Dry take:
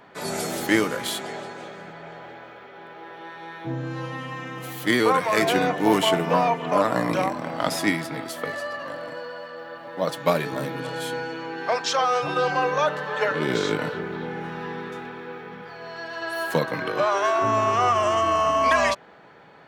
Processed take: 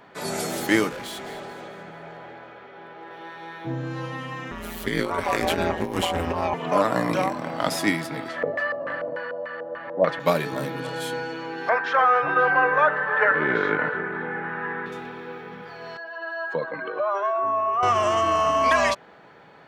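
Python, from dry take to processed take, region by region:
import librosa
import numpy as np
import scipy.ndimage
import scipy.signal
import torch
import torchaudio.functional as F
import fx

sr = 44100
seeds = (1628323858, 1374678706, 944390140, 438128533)

y = fx.chain(x, sr, fx.high_shelf(hz=4300.0, db=-7.5),
    fx.clip_hard(threshold_db=-32.5),
    fx.echo_wet_highpass(ms=215, feedback_pct=42, hz=2200.0, wet_db=-13), at=(0.89, 3.11))
y = fx.chain(y, sr, fx.low_shelf(hz=150.0, db=5.5),
    fx.ring_mod(carrier_hz=85.0),
    fx.over_compress(threshold_db=-24.0, ratio=-0.5), at=(4.51, 6.54))
y = fx.chain(y, sr, fx.high_shelf(hz=3400.0, db=10.0),
    fx.filter_lfo_lowpass(shape='square', hz=3.4, low_hz=590.0, high_hz=1900.0, q=2.2), at=(8.28, 10.2))
y = fx.chain(y, sr, fx.lowpass_res(hz=1700.0, q=2.9),
    fx.low_shelf(hz=160.0, db=-8.5), at=(11.69, 14.86))
y = fx.chain(y, sr, fx.spec_expand(power=1.6),
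    fx.highpass(hz=580.0, slope=6),
    fx.air_absorb(metres=120.0), at=(15.97, 17.83))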